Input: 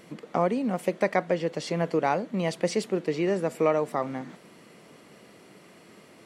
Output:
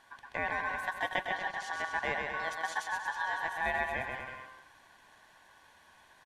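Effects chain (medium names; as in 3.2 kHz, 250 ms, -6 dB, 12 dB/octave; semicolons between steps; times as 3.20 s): ring modulator 1.3 kHz; bouncing-ball echo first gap 130 ms, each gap 0.8×, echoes 5; trim -7.5 dB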